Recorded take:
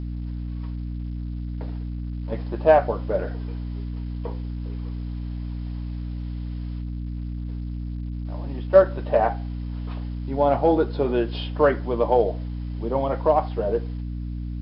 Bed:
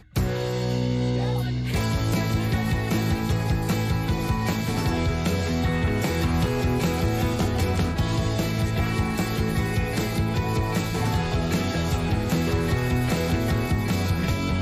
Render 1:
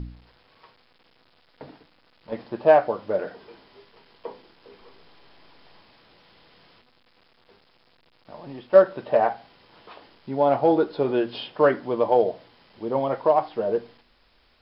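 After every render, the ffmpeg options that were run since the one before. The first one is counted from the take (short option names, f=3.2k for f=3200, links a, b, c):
-af "bandreject=f=60:t=h:w=4,bandreject=f=120:t=h:w=4,bandreject=f=180:t=h:w=4,bandreject=f=240:t=h:w=4,bandreject=f=300:t=h:w=4"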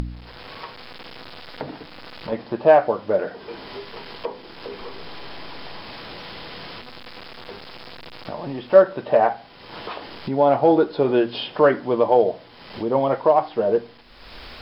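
-filter_complex "[0:a]asplit=2[a][b];[b]alimiter=limit=-14dB:level=0:latency=1:release=133,volume=-2.5dB[c];[a][c]amix=inputs=2:normalize=0,acompressor=mode=upward:threshold=-23dB:ratio=2.5"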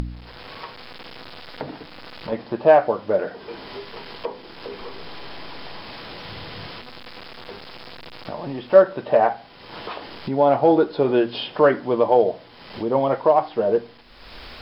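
-filter_complex "[0:a]asettb=1/sr,asplit=3[a][b][c];[a]atrim=end=6.244[d];[b]atrim=start=6.24:end=6.7,asetpts=PTS-STARTPTS,afade=t=in:d=0.004:c=qsin,afade=t=out:st=0.456:d=0.004:c=qsin,equalizer=f=97:w=1.5:g=12.5[e];[c]atrim=start=6.696[f];[d][e]acrossfade=d=0.004:c1=hsin:c2=qsin[g];[g][f]acrossfade=d=0.004:c1=qsin:c2=hsin"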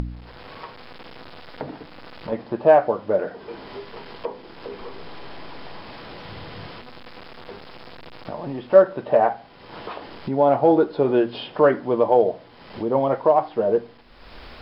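-af "highshelf=f=2.6k:g=-8.5"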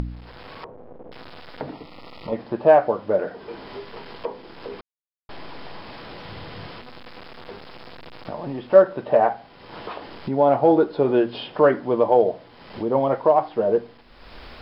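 -filter_complex "[0:a]asettb=1/sr,asplit=3[a][b][c];[a]atrim=end=0.644[d];[b]atrim=start=0.64:end=1.12,asetpts=PTS-STARTPTS,afade=t=in:d=0.004:c=qsin,afade=t=out:st=0.476:d=0.004:c=qsin,lowpass=f=550:t=q:w=1.6[e];[c]atrim=start=1.116[f];[d][e]acrossfade=d=0.004:c1=hsin:c2=qsin[g];[g][f]acrossfade=d=0.004:c1=qsin:c2=hsin,asettb=1/sr,asplit=3[h][i][j];[h]atrim=end=1.734[k];[i]atrim=start=1.73:end=2.36,asetpts=PTS-STARTPTS,afade=t=in:d=0.004:c=qsin,afade=t=out:st=0.626:d=0.004:c=qsin,asuperstop=centerf=1600:order=8:qfactor=3.7[l];[j]atrim=start=2.356[m];[k][l]acrossfade=d=0.004:c1=hsin:c2=qsin[n];[n][m]acrossfade=d=0.004:c1=qsin:c2=hsin,asplit=3[o][p][q];[o]atrim=end=4.81,asetpts=PTS-STARTPTS,afade=t=out:st=4.806:d=0.004:c=hsin[r];[p]atrim=start=4.81:end=5.29,asetpts=PTS-STARTPTS,volume=0[s];[q]atrim=start=5.29,asetpts=PTS-STARTPTS,afade=t=in:d=0.004:c=hsin[t];[r][s][t]concat=n=3:v=0:a=1"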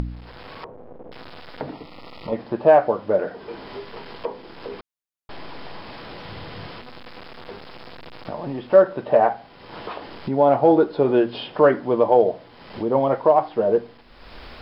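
-af "volume=1dB,alimiter=limit=-3dB:level=0:latency=1"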